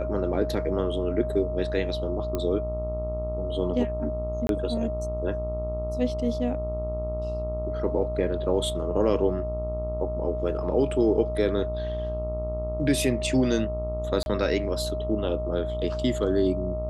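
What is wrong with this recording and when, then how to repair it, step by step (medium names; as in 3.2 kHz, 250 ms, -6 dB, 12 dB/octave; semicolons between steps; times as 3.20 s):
buzz 60 Hz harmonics 22 -32 dBFS
whine 620 Hz -30 dBFS
2.35 s: pop -15 dBFS
4.47–4.49 s: dropout 22 ms
14.23–14.26 s: dropout 31 ms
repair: de-click; de-hum 60 Hz, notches 22; band-stop 620 Hz, Q 30; interpolate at 4.47 s, 22 ms; interpolate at 14.23 s, 31 ms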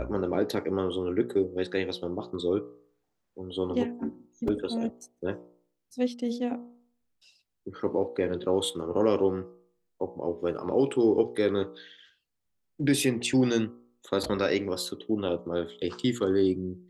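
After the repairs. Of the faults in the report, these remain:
nothing left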